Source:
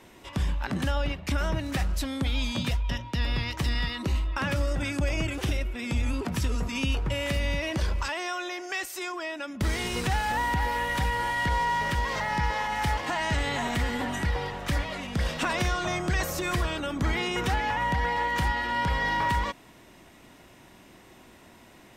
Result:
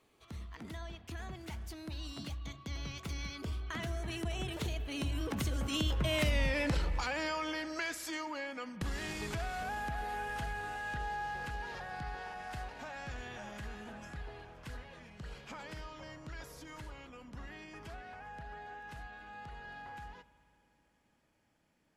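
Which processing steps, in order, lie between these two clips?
Doppler pass-by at 6.35, 52 m/s, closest 15 m; compressor 2.5:1, threshold -44 dBFS, peak gain reduction 13.5 dB; spring tank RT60 3.2 s, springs 60 ms, chirp 65 ms, DRR 15.5 dB; gain +10 dB

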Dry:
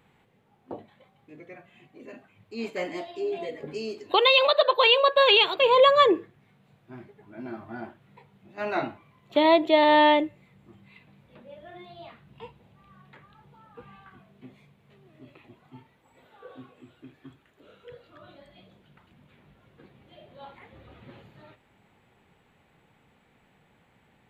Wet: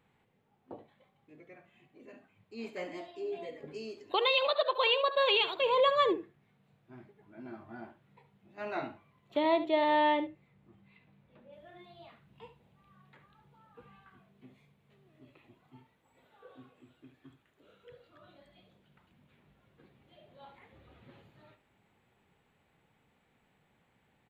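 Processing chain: high shelf 4800 Hz -2 dB, from 9.37 s -10 dB, from 11.53 s +2 dB; echo 71 ms -13 dB; gain -8.5 dB

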